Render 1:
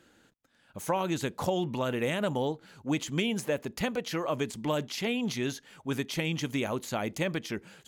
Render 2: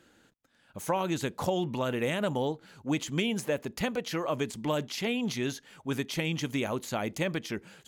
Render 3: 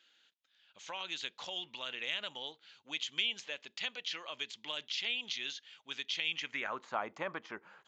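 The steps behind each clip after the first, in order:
nothing audible
band-pass sweep 3300 Hz -> 1100 Hz, 6.25–6.86; downsampling 16000 Hz; gain +4 dB

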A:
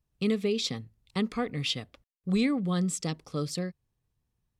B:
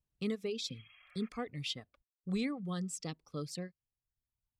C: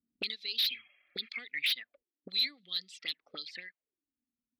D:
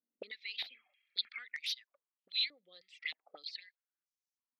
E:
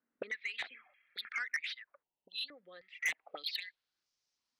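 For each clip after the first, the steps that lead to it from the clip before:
spectral repair 0.67–1.26, 550–3300 Hz both; reverb removal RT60 1.1 s; gain -8 dB
auto-wah 240–4100 Hz, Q 6.7, up, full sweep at -35.5 dBFS; sine folder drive 14 dB, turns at -30 dBFS; graphic EQ 125/250/1000/2000/4000/8000 Hz -10/+9/-10/+11/+9/-9 dB; gain -2.5 dB
stepped band-pass 3.2 Hz 540–5800 Hz; gain +5 dB
low-pass sweep 1600 Hz -> 5200 Hz, 2.81–4.07; spectral delete 2.03–2.49, 1000–2600 Hz; soft clip -36 dBFS, distortion -6 dB; gain +8 dB

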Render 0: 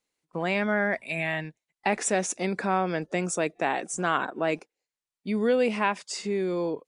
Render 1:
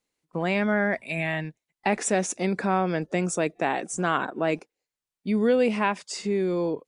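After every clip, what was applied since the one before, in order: low shelf 350 Hz +5 dB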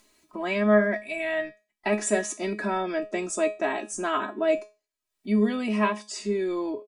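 comb 3.1 ms, depth 99%; upward compressor, threshold -43 dBFS; resonator 210 Hz, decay 0.28 s, harmonics all, mix 80%; gain +5.5 dB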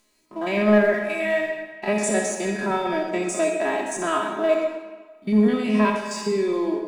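stepped spectrum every 50 ms; sample leveller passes 1; reverb RT60 1.4 s, pre-delay 53 ms, DRR 3.5 dB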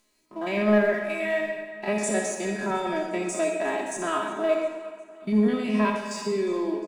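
feedback echo 0.357 s, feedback 53%, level -20 dB; gain -3.5 dB

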